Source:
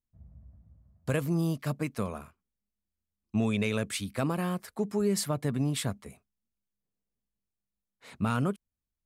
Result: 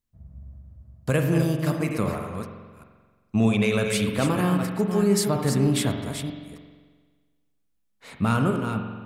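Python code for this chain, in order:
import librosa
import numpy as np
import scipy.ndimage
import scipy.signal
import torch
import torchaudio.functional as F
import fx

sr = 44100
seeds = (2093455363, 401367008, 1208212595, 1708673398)

y = fx.reverse_delay(x, sr, ms=315, wet_db=-7)
y = fx.rev_spring(y, sr, rt60_s=1.5, pass_ms=(44,), chirp_ms=75, drr_db=4.5)
y = y * librosa.db_to_amplitude(5.5)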